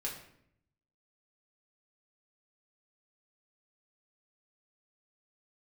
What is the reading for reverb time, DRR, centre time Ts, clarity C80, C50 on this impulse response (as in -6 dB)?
0.70 s, -3.0 dB, 29 ms, 9.5 dB, 6.5 dB